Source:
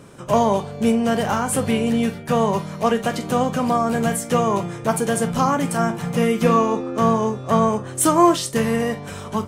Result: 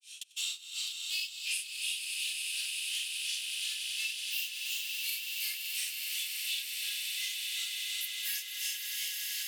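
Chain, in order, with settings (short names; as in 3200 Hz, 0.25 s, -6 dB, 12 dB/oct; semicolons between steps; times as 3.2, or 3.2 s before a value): repeated pitch sweeps +10.5 st, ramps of 1.426 s; gate with hold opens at -27 dBFS; Chebyshev high-pass 2700 Hz, order 5; high shelf 9700 Hz -8.5 dB; Schroeder reverb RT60 2.4 s, combs from 32 ms, DRR -7.5 dB; grains 0.243 s, grains 2.8/s, pitch spread up and down by 0 st; on a send: swelling echo 94 ms, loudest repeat 8, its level -11 dB; on the sum: three-band squash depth 100%; gain -2.5 dB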